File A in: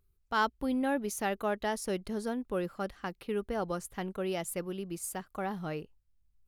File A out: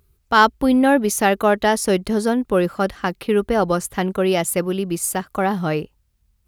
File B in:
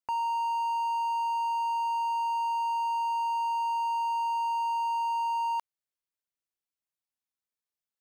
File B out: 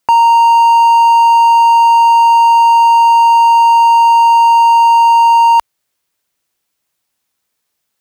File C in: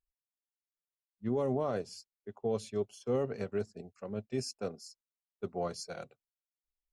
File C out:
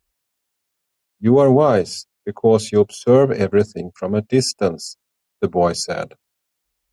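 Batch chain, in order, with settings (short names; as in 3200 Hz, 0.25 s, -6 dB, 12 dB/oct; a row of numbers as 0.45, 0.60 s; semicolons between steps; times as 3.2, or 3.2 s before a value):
HPF 41 Hz; normalise peaks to -2 dBFS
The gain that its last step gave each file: +15.5, +22.0, +19.0 dB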